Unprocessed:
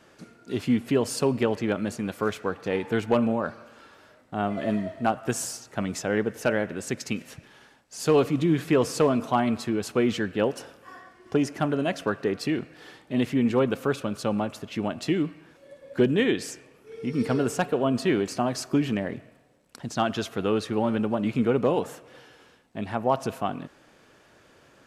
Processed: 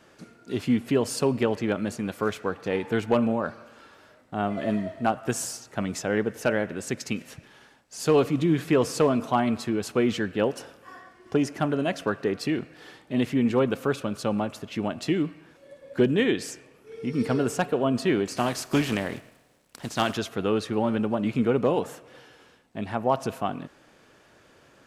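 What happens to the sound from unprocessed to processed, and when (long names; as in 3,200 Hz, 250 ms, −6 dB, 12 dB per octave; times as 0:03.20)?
0:18.36–0:20.16: compressing power law on the bin magnitudes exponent 0.68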